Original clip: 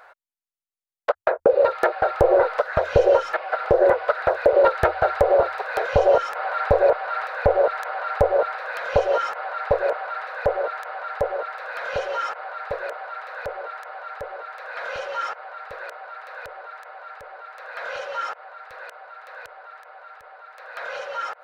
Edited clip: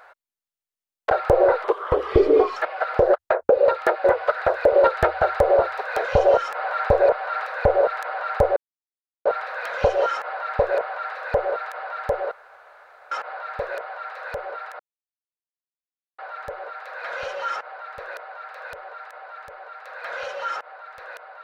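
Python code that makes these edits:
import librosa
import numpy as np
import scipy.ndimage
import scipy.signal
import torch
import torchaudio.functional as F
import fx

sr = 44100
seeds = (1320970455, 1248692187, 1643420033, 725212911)

y = fx.edit(x, sr, fx.move(start_s=1.1, length_s=0.91, to_s=3.85),
    fx.speed_span(start_s=2.55, length_s=0.73, speed=0.79),
    fx.insert_silence(at_s=8.37, length_s=0.69),
    fx.room_tone_fill(start_s=11.43, length_s=0.8),
    fx.insert_silence(at_s=13.91, length_s=1.39), tone=tone)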